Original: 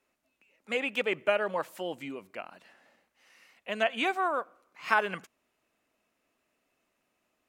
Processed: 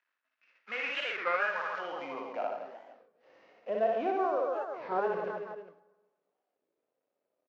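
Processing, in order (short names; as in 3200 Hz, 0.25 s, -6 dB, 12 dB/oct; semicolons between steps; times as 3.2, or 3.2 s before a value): CVSD 32 kbps; reverse bouncing-ball echo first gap 60 ms, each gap 1.3×, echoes 5; in parallel at -2 dB: negative-ratio compressor -39 dBFS, ratio -1; on the sum: gate -54 dBFS, range -11 dB; harmonic-percussive split percussive -7 dB; on a send at -16 dB: reverb RT60 1.3 s, pre-delay 3 ms; on the sum: band-pass sweep 1600 Hz -> 500 Hz, 1.63–2.85; record warp 33 1/3 rpm, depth 250 cents; gain +5 dB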